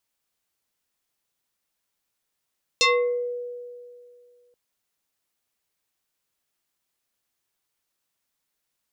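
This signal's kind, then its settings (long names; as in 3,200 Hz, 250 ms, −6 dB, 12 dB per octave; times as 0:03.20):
two-operator FM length 1.73 s, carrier 487 Hz, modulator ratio 3.24, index 4.1, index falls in 0.50 s exponential, decay 2.32 s, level −14.5 dB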